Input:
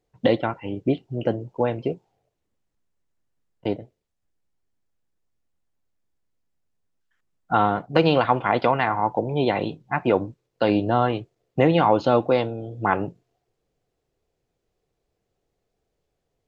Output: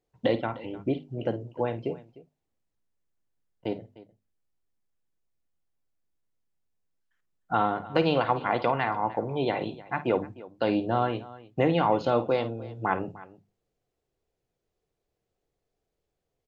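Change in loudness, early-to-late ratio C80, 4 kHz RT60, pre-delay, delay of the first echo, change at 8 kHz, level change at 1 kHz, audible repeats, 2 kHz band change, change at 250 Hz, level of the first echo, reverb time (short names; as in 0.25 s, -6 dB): -5.5 dB, none, none, none, 52 ms, n/a, -5.0 dB, 2, -5.5 dB, -5.5 dB, -13.0 dB, none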